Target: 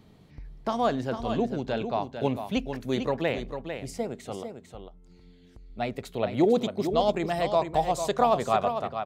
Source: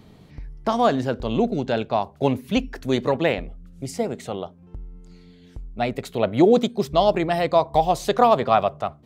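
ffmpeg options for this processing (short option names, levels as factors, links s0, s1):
-filter_complex "[0:a]asettb=1/sr,asplit=3[s0][s1][s2];[s0]atrim=end=4.434[s3];[s1]atrim=start=4.43:end=5.7,asetpts=PTS-STARTPTS,afade=t=in:d=0.004:c=qsin,afade=t=out:st=1.266:d=0.004:c=qsin,acompressor=threshold=0.00562:ratio=2[s4];[s2]atrim=start=5.696[s5];[s3][s4]acrossfade=d=0.004:c1=hsin:c2=qsin[s6];[s6][s5]acrossfade=d=0.004:c1=qsin:c2=hsin,asettb=1/sr,asplit=3[s7][s8][s9];[s7]atrim=end=6.984[s10];[s8]atrim=start=6.98:end=8.2,asetpts=PTS-STARTPTS,afade=t=in:d=0.004:c=qsin,afade=t=out:st=1.216:d=0.004:c=qsin,equalizer=f=7500:w=3.1:g=9[s11];[s9]atrim=start=8.196[s12];[s10][s11]acrossfade=d=0.004:c1=hsin:c2=qsin[s13];[s13][s12]acrossfade=d=0.004:c1=qsin:c2=hsin,asplit=2[s14][s15];[s15]aecho=0:1:449:0.398[s16];[s14][s16]amix=inputs=2:normalize=0,volume=0.473"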